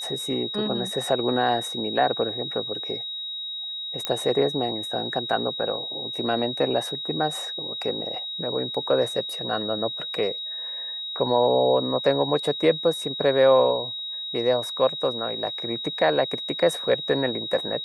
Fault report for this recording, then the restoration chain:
whine 3.8 kHz -30 dBFS
4.05 s: pop -10 dBFS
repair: de-click; band-stop 3.8 kHz, Q 30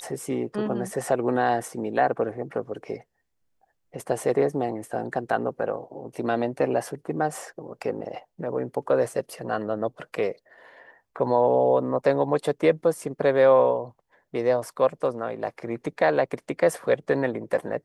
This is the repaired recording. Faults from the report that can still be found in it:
nothing left

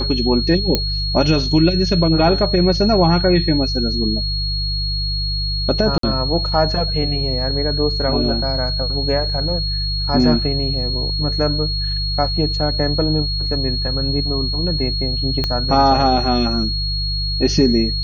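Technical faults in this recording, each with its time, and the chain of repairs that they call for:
hum 50 Hz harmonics 3 -23 dBFS
whine 4.3 kHz -22 dBFS
0.75 s: pop -2 dBFS
5.98–6.03 s: dropout 53 ms
15.44 s: pop -7 dBFS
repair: de-click; de-hum 50 Hz, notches 3; band-stop 4.3 kHz, Q 30; interpolate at 5.98 s, 53 ms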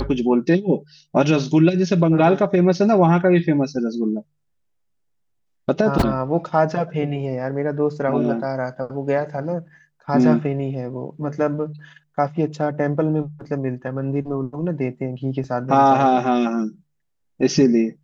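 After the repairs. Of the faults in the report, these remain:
15.44 s: pop

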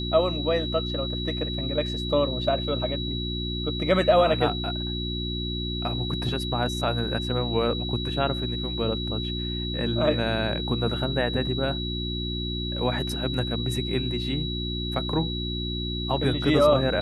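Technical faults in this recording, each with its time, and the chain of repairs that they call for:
hum 60 Hz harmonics 6 -31 dBFS
whine 3.9 kHz -32 dBFS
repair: band-stop 3.9 kHz, Q 30; de-hum 60 Hz, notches 6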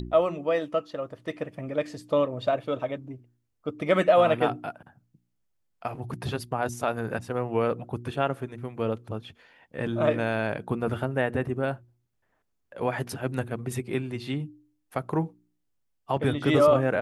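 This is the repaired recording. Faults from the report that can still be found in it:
nothing left

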